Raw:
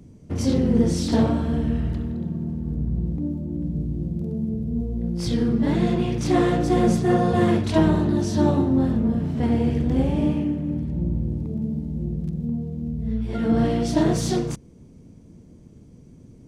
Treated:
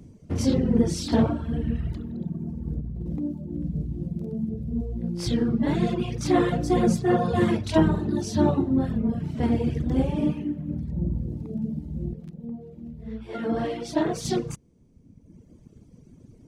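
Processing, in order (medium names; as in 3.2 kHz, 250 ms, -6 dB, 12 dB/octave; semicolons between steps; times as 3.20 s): reverb removal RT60 1.4 s; 2.80–3.20 s: compressor with a negative ratio -31 dBFS, ratio -1; 12.13–14.25 s: tone controls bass -11 dB, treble -6 dB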